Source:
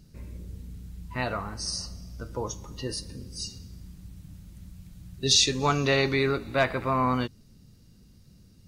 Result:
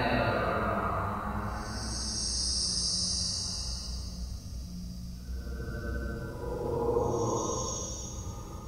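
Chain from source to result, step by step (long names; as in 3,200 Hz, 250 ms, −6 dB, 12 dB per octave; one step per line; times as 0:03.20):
extreme stretch with random phases 6.1×, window 0.25 s, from 0:01.25
backwards echo 79 ms −3.5 dB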